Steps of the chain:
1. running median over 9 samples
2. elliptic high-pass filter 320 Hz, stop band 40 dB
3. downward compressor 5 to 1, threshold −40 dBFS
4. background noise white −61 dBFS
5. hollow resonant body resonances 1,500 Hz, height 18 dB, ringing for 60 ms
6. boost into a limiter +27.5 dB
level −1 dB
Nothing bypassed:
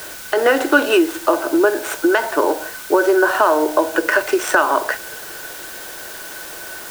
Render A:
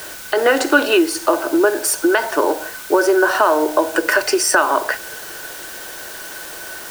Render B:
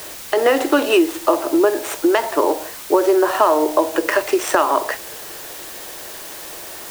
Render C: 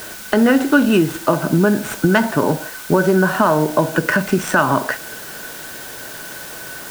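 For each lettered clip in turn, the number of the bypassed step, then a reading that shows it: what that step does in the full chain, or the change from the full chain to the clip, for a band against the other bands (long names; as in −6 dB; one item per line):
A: 1, 8 kHz band +6.5 dB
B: 5, 2 kHz band −6.5 dB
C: 2, 250 Hz band +6.0 dB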